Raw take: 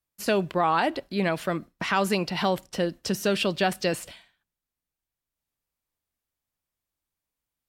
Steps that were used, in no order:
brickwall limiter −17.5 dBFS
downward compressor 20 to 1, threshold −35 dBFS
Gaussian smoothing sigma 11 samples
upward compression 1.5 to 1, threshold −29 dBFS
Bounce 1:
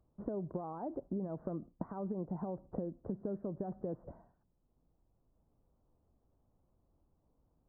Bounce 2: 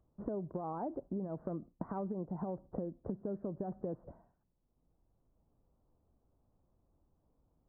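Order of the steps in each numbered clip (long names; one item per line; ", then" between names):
brickwall limiter, then downward compressor, then Gaussian smoothing, then upward compression
brickwall limiter, then Gaussian smoothing, then upward compression, then downward compressor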